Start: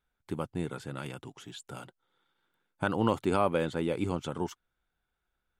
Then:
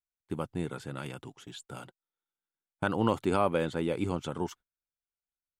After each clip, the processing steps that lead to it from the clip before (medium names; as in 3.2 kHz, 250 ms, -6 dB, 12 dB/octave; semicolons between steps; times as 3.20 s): gate -49 dBFS, range -23 dB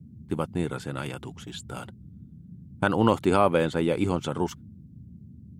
band noise 67–220 Hz -52 dBFS; trim +6 dB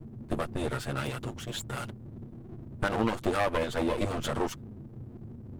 comb filter that takes the minimum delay 8.6 ms; compression 3:1, threshold -30 dBFS, peak gain reduction 10 dB; trim +4 dB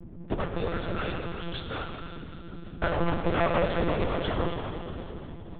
plate-style reverb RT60 3.4 s, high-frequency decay 0.95×, DRR 2 dB; monotone LPC vocoder at 8 kHz 170 Hz; trim +1 dB